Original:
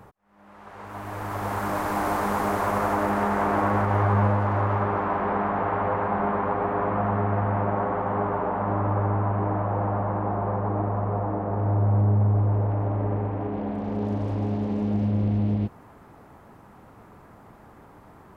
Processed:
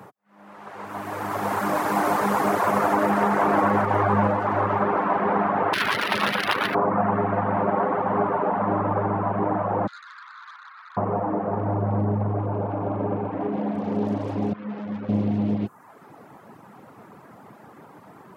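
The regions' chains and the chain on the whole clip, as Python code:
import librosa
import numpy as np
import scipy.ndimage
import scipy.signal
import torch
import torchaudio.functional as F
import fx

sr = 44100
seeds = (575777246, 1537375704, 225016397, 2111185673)

y = fx.chain(x, sr, fx.self_delay(depth_ms=0.99),
    fx.resample_linear(factor=3), at=(5.73, 6.75))
y = fx.chain(y, sr, fx.steep_highpass(hz=1300.0, slope=48),
    fx.doubler(ms=12.0, db=-12.0),
    fx.transformer_sat(knee_hz=2300.0), at=(9.87, 10.97))
y = fx.chain(y, sr, fx.peak_eq(hz=6200.0, db=-10.0, octaves=0.33),
    fx.notch(hz=1900.0, q=5.9), at=(12.46, 13.32))
y = fx.chain(y, sr, fx.tilt_shelf(db=6.5, hz=1400.0),
    fx.tube_stage(drive_db=31.0, bias=0.75),
    fx.ensemble(), at=(14.53, 15.09))
y = scipy.signal.sosfilt(scipy.signal.butter(4, 130.0, 'highpass', fs=sr, output='sos'), y)
y = fx.dereverb_blind(y, sr, rt60_s=0.76)
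y = y * librosa.db_to_amplitude(5.5)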